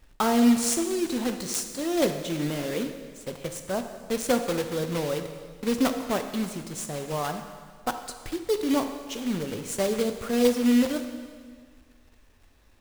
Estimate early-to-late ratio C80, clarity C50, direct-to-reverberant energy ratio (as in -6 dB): 9.5 dB, 8.0 dB, 6.5 dB